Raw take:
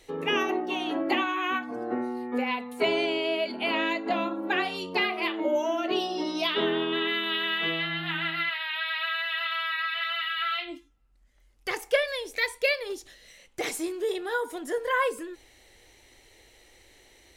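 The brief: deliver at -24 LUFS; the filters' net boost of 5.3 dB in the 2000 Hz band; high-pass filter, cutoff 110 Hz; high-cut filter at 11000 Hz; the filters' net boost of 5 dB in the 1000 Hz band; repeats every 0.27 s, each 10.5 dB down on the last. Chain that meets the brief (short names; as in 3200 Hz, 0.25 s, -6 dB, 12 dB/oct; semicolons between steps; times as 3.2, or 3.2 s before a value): HPF 110 Hz; LPF 11000 Hz; bell 1000 Hz +5 dB; bell 2000 Hz +5 dB; feedback echo 0.27 s, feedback 30%, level -10.5 dB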